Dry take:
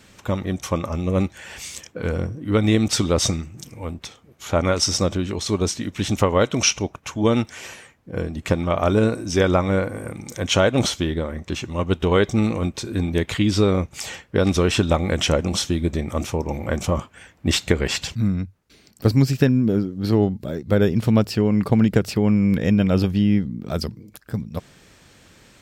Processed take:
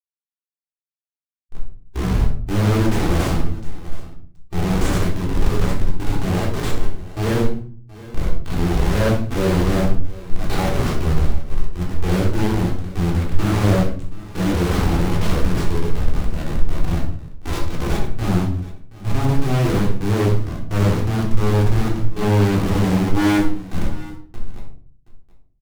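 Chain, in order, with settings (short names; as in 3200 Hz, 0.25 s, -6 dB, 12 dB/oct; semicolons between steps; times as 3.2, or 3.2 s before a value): tape start at the beginning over 2.61 s; limiter -10.5 dBFS, peak gain reduction 8.5 dB; formant shift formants +5 st; Schmitt trigger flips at -20 dBFS; harmonic-percussive split percussive -17 dB; on a send: tapped delay 65/725 ms -12/-18.5 dB; on the sum: shoebox room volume 490 m³, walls furnished, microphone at 3.6 m; Doppler distortion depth 0.6 ms; gain +3 dB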